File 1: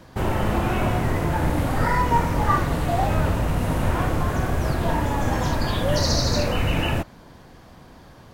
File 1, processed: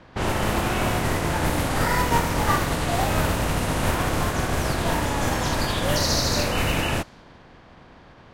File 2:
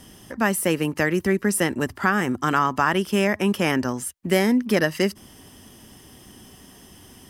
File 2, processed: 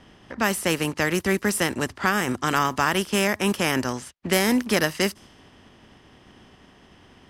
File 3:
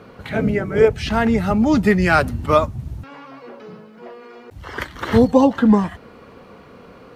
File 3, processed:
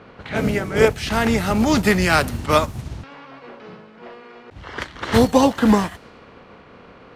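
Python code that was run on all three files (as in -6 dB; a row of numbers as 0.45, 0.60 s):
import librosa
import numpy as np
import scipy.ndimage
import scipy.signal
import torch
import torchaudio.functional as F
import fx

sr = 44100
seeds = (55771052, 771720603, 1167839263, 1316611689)

y = fx.spec_flatten(x, sr, power=0.69)
y = fx.env_lowpass(y, sr, base_hz=2700.0, full_db=-16.5)
y = F.gain(torch.from_numpy(y), -1.5).numpy()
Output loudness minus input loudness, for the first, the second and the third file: -0.5, -1.0, -1.5 LU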